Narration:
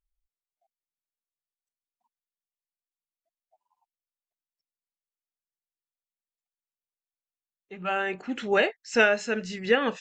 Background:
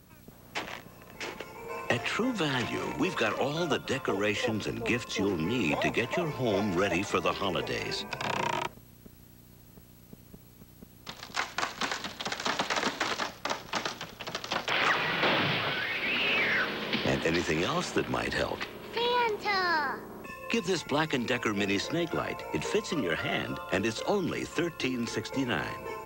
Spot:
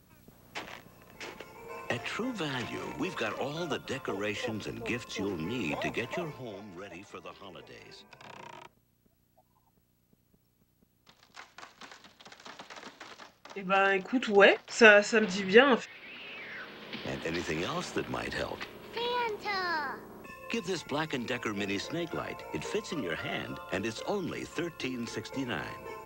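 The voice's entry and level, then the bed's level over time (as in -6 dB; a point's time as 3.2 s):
5.85 s, +2.5 dB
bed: 6.23 s -5 dB
6.58 s -17 dB
16.4 s -17 dB
17.46 s -4.5 dB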